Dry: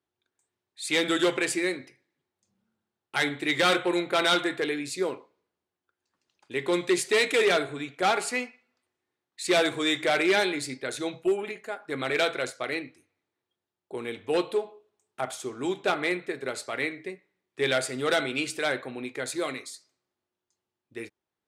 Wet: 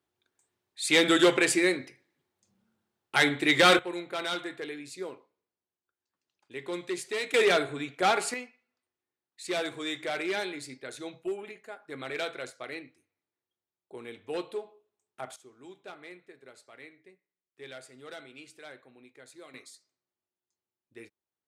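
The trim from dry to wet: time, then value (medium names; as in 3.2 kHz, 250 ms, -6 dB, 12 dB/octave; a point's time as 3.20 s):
+3 dB
from 3.79 s -9.5 dB
from 7.34 s -0.5 dB
from 8.34 s -8.5 dB
from 15.36 s -19.5 dB
from 19.54 s -9.5 dB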